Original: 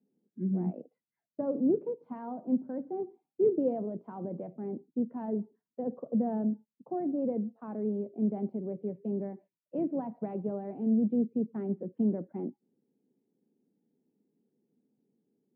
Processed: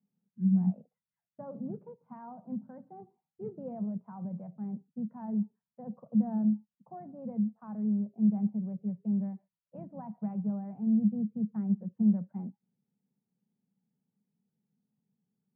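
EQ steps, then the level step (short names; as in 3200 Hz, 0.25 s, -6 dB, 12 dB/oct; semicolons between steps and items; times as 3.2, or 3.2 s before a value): LPF 1600 Hz 12 dB/oct; dynamic EQ 210 Hz, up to +8 dB, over -44 dBFS, Q 5.1; EQ curve 190 Hz 0 dB, 310 Hz -24 dB, 880 Hz -4 dB; +2.0 dB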